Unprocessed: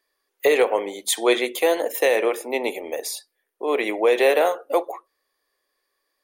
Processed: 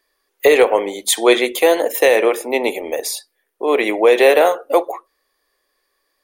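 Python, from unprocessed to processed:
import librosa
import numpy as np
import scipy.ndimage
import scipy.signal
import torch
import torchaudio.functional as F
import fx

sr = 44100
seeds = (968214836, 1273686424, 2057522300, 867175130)

y = fx.low_shelf(x, sr, hz=95.0, db=7.5)
y = y * 10.0 ** (6.0 / 20.0)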